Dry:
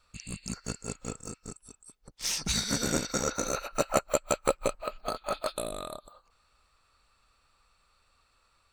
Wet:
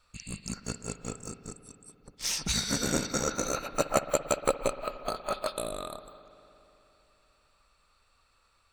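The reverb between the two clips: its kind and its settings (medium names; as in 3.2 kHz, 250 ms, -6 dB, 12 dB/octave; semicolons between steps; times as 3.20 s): spring tank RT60 3.3 s, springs 58 ms, chirp 35 ms, DRR 12 dB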